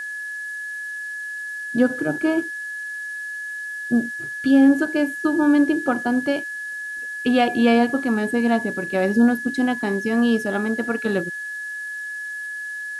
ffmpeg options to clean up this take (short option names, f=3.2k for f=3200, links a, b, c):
-af "bandreject=f=1.7k:w=30,afftdn=nr=30:nf=-31"